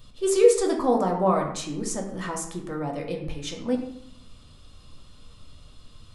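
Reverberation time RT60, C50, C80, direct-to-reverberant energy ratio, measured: 0.70 s, 6.5 dB, 9.0 dB, 1.0 dB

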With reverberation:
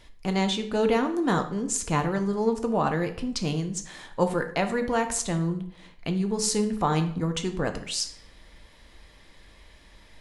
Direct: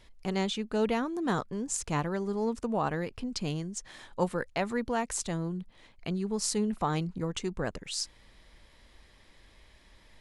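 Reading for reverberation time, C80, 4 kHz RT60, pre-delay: 0.65 s, 14.5 dB, 0.45 s, 3 ms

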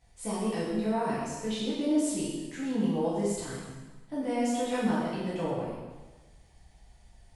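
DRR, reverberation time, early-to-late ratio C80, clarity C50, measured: -9.0 dB, 1.3 s, 2.0 dB, -0.5 dB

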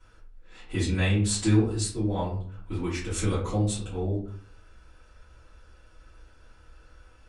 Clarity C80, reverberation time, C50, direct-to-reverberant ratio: 10.0 dB, 0.55 s, 5.5 dB, -12.0 dB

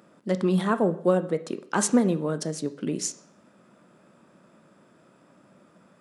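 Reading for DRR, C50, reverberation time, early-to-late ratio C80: 11.0 dB, 15.0 dB, 0.60 s, 18.5 dB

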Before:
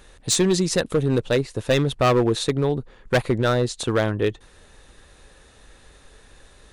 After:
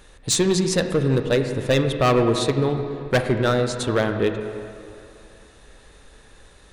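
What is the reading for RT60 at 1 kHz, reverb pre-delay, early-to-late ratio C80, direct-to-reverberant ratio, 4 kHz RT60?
2.8 s, 23 ms, 7.5 dB, 6.0 dB, 1.9 s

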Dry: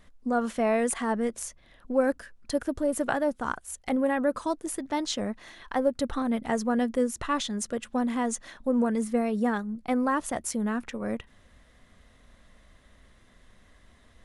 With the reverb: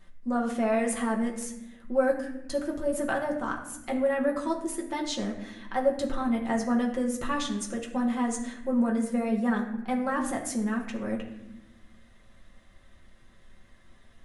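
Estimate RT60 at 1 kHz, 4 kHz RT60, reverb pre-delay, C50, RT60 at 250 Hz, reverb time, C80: 0.80 s, 0.60 s, 5 ms, 8.0 dB, 1.8 s, 0.95 s, 10.0 dB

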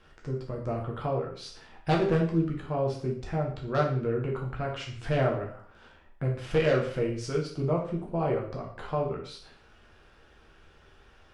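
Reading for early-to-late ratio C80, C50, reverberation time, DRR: 10.5 dB, 6.0 dB, 0.50 s, -1.5 dB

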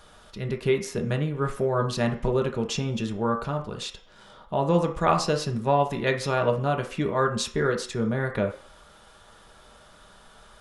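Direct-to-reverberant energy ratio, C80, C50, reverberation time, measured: 2.5 dB, 14.5 dB, 10.0 dB, 0.50 s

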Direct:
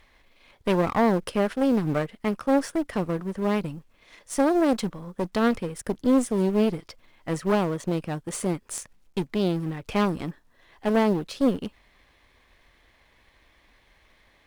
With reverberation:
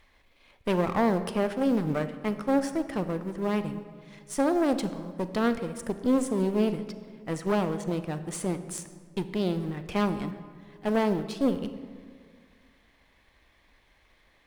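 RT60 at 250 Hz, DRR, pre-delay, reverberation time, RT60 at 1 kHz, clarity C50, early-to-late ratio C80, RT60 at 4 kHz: 2.2 s, 10.5 dB, 29 ms, 1.9 s, 1.7 s, 11.5 dB, 12.5 dB, 1.1 s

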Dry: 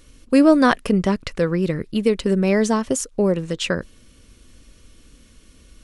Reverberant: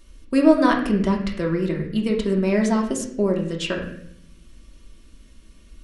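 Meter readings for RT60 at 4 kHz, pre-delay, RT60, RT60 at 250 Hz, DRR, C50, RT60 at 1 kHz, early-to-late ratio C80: 0.55 s, 3 ms, 0.70 s, 1.0 s, -0.5 dB, 7.0 dB, 0.60 s, 9.5 dB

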